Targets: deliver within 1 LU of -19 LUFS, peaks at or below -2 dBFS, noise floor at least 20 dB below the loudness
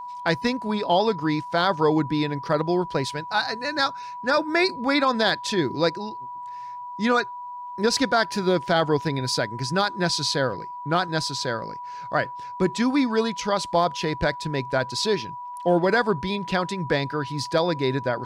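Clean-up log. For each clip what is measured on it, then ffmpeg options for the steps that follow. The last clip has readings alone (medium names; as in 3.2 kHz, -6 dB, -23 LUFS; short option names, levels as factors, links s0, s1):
steady tone 980 Hz; tone level -33 dBFS; loudness -24.0 LUFS; peak level -10.0 dBFS; loudness target -19.0 LUFS
-> -af "bandreject=f=980:w=30"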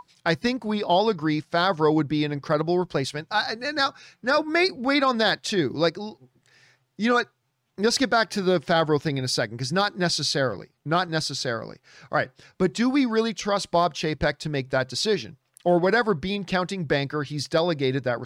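steady tone not found; loudness -24.0 LUFS; peak level -10.0 dBFS; loudness target -19.0 LUFS
-> -af "volume=1.78"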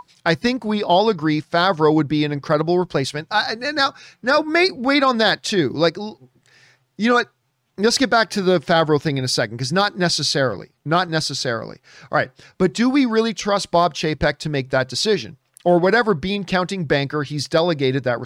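loudness -19.0 LUFS; peak level -5.0 dBFS; noise floor -67 dBFS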